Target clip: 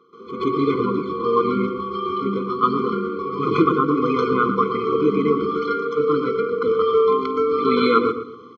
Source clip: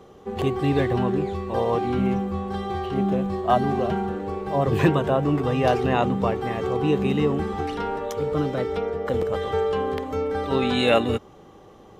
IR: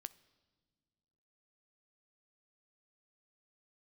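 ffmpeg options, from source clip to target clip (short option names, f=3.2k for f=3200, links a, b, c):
-filter_complex "[0:a]highshelf=f=2.7k:g=-7.5,atempo=1.4,highpass=400,equalizer=f=400:t=q:w=4:g=-8,equalizer=f=870:t=q:w=4:g=3,equalizer=f=1.3k:t=q:w=4:g=3,equalizer=f=1.9k:t=q:w=4:g=-7,equalizer=f=2.8k:t=q:w=4:g=-5,equalizer=f=4.2k:t=q:w=4:g=3,lowpass=f=4.9k:w=0.5412,lowpass=f=4.9k:w=1.3066,asplit=2[a][b];[b]adelay=114,lowpass=f=1.6k:p=1,volume=-8dB,asplit=2[c][d];[d]adelay=114,lowpass=f=1.6k:p=1,volume=0.28,asplit=2[e][f];[f]adelay=114,lowpass=f=1.6k:p=1,volume=0.28[g];[a][c][e][g]amix=inputs=4:normalize=0,asplit=2[h][i];[1:a]atrim=start_sample=2205,adelay=130[j];[i][j]afir=irnorm=-1:irlink=0,volume=17dB[k];[h][k]amix=inputs=2:normalize=0,afftfilt=real='re*eq(mod(floor(b*sr/1024/500),2),0)':imag='im*eq(mod(floor(b*sr/1024/500),2),0)':win_size=1024:overlap=0.75"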